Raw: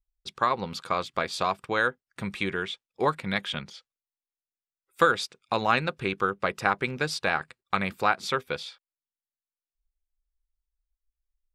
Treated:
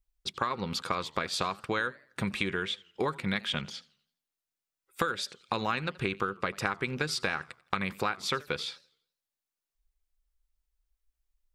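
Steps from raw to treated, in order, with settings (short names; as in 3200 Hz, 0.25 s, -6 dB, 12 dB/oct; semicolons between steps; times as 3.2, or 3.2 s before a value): dynamic EQ 700 Hz, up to -7 dB, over -39 dBFS, Q 1.6; compressor 6:1, threshold -31 dBFS, peak gain reduction 13.5 dB; warbling echo 84 ms, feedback 41%, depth 207 cents, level -22 dB; gain +4 dB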